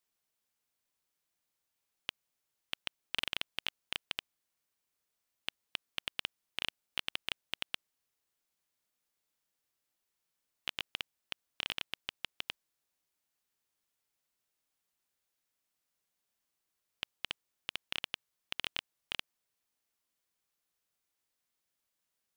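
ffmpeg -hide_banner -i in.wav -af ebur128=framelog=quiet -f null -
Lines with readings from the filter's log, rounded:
Integrated loudness:
  I:         -40.6 LUFS
  Threshold: -50.6 LUFS
Loudness range:
  LRA:         8.7 LU
  Threshold: -63.3 LUFS
  LRA low:   -49.6 LUFS
  LRA high:  -40.9 LUFS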